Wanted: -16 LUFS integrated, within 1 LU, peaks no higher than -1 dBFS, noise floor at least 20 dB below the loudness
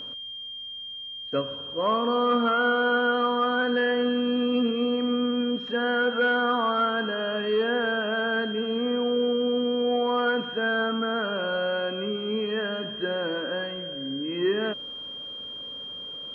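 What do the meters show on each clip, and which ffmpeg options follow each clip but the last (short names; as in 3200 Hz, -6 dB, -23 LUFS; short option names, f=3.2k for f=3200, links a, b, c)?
steady tone 3200 Hz; tone level -35 dBFS; loudness -26.0 LUFS; peak -12.5 dBFS; loudness target -16.0 LUFS
-> -af "bandreject=f=3.2k:w=30"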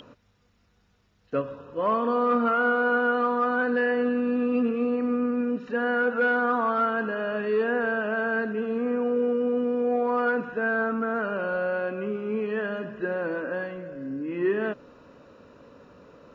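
steady tone none; loudness -26.0 LUFS; peak -13.0 dBFS; loudness target -16.0 LUFS
-> -af "volume=10dB"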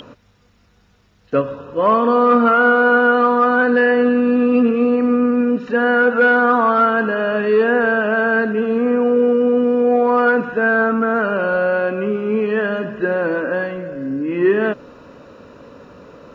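loudness -16.0 LUFS; peak -3.0 dBFS; noise floor -55 dBFS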